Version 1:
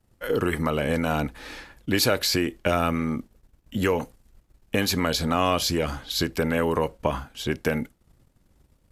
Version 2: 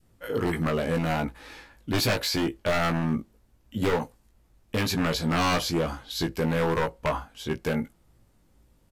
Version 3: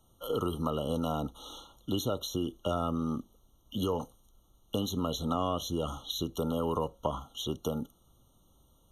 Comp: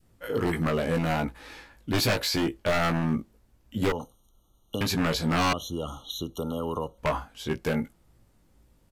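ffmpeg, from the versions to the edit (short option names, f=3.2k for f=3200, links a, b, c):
-filter_complex "[2:a]asplit=2[a][b];[1:a]asplit=3[c][d][e];[c]atrim=end=3.922[f];[a]atrim=start=3.918:end=4.812[g];[d]atrim=start=4.808:end=5.532[h];[b]atrim=start=5.528:end=6.982[i];[e]atrim=start=6.978[j];[f][g]acrossfade=d=0.004:c1=hsin:c2=hsin[k];[k][h]acrossfade=d=0.004:c1=hsin:c2=hsin[l];[l][i]acrossfade=d=0.004:c1=hsin:c2=hsin[m];[m][j]acrossfade=d=0.004:c1=hsin:c2=hsin"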